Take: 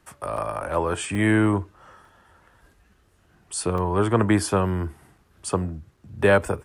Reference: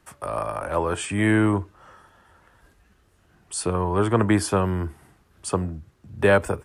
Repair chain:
repair the gap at 0:00.37/0:01.15/0:02.05/0:03.78/0:05.18/0:05.97, 3.4 ms

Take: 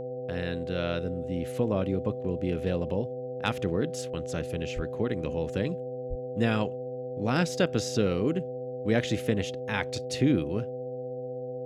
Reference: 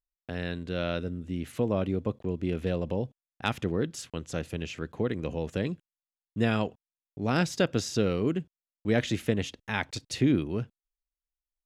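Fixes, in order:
hum removal 129 Hz, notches 6
notch filter 500 Hz, Q 30
high-pass at the plosives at 0:04.75/0:06.09

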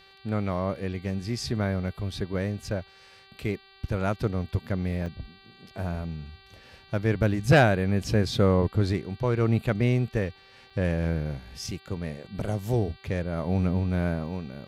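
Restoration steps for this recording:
hum removal 388.4 Hz, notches 12
repair the gap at 0:05.06/0:10.70, 4.4 ms

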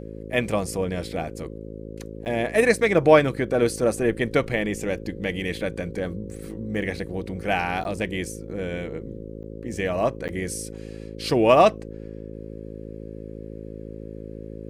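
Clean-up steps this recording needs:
hum removal 54 Hz, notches 10
repair the gap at 0:02.25/0:07.84/0:09.43/0:10.28, 9.4 ms

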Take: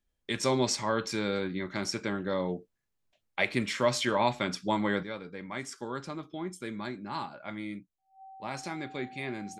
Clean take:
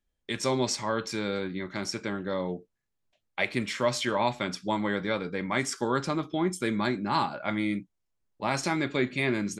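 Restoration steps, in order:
notch filter 770 Hz, Q 30
level correction +9.5 dB, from 0:05.03

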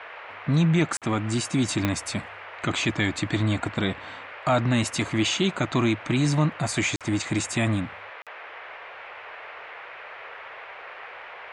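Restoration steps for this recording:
click removal
repair the gap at 0:00.97/0:06.96/0:08.22, 47 ms
noise reduction from a noise print 29 dB

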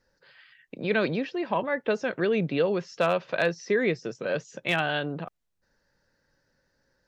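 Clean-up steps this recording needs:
clipped peaks rebuilt −12.5 dBFS

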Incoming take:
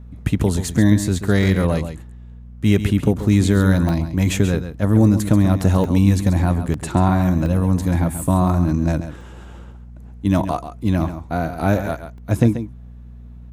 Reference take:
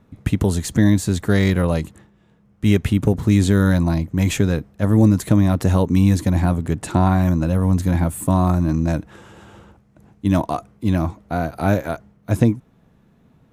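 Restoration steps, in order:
hum removal 60 Hz, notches 4
repair the gap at 0:03.89/0:05.84/0:06.74/0:07.46/0:09.21/0:12.18, 1.6 ms
echo removal 135 ms −10.5 dB

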